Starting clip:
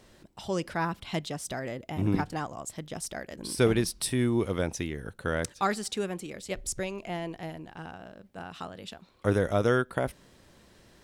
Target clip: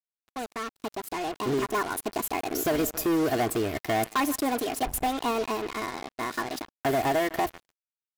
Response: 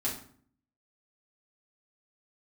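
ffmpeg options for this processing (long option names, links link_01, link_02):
-filter_complex "[0:a]aecho=1:1:3.8:0.69,asplit=2[link_01][link_02];[link_02]adelay=202,lowpass=frequency=4800:poles=1,volume=-23.5dB,asplit=2[link_03][link_04];[link_04]adelay=202,lowpass=frequency=4800:poles=1,volume=0.49,asplit=2[link_05][link_06];[link_06]adelay=202,lowpass=frequency=4800:poles=1,volume=0.49[link_07];[link_01][link_03][link_05][link_07]amix=inputs=4:normalize=0,acrossover=split=1300|7400[link_08][link_09][link_10];[link_08]acompressor=threshold=-27dB:ratio=4[link_11];[link_09]acompressor=threshold=-49dB:ratio=4[link_12];[link_10]acompressor=threshold=-42dB:ratio=4[link_13];[link_11][link_12][link_13]amix=inputs=3:normalize=0,asetrate=59535,aresample=44100,dynaudnorm=framelen=400:gausssize=7:maxgain=13dB,volume=17dB,asoftclip=hard,volume=-17dB,lowshelf=frequency=140:gain=-7,acrusher=bits=4:mix=0:aa=0.5,volume=-3.5dB"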